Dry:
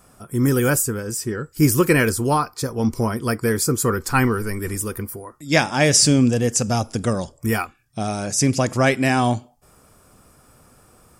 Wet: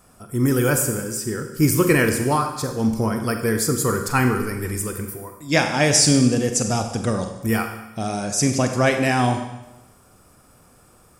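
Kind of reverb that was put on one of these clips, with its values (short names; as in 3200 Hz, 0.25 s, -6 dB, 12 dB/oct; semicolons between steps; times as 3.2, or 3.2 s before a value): Schroeder reverb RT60 1 s, combs from 32 ms, DRR 5.5 dB; gain -1.5 dB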